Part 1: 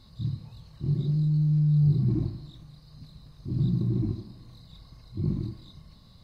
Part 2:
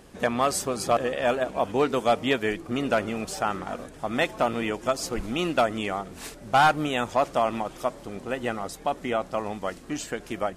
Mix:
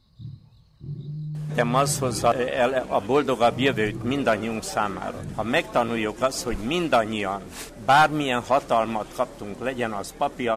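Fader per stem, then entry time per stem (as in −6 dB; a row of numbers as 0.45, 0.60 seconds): −8.0, +2.5 decibels; 0.00, 1.35 seconds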